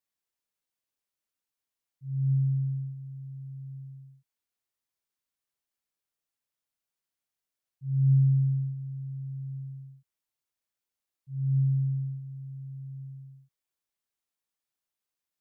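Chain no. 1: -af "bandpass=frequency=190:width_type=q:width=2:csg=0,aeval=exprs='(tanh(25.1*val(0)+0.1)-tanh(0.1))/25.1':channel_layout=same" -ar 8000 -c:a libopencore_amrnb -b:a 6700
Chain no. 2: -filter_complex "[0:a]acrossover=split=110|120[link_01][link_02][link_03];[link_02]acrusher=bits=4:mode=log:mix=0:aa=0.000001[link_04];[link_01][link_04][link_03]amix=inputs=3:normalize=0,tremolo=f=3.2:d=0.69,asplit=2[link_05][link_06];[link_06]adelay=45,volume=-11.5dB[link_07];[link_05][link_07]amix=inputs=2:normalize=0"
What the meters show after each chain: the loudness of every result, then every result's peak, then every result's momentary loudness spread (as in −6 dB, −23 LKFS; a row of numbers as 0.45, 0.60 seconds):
−47.0, −30.0 LKFS; −31.5, −14.5 dBFS; 15, 20 LU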